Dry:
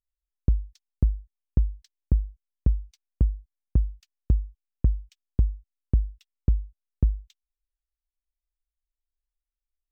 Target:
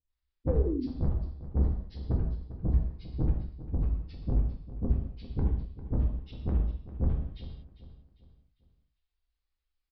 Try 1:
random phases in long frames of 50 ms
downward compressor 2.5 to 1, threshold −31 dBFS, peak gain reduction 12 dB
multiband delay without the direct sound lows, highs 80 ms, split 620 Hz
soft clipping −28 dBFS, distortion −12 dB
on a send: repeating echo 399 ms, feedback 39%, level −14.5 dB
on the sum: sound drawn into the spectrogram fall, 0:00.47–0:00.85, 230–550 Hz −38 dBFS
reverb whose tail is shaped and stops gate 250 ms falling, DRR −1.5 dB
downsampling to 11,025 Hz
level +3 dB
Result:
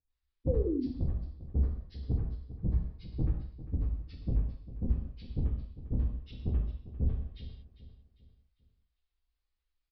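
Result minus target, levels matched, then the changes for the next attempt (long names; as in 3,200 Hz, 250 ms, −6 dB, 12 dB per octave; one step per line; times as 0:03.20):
downward compressor: peak gain reduction +12 dB
remove: downward compressor 2.5 to 1, threshold −31 dBFS, peak gain reduction 12 dB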